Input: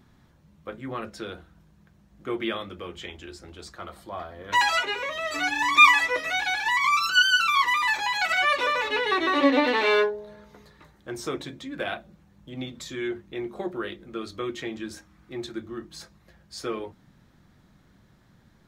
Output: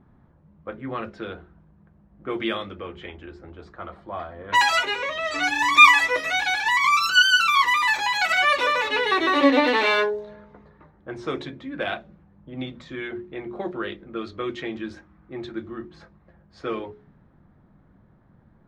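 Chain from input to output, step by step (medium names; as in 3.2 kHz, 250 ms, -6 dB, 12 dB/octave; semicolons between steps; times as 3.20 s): hum notches 60/120/180/240/300/360/420 Hz; level-controlled noise filter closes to 1.1 kHz, open at -23 dBFS; trim +3 dB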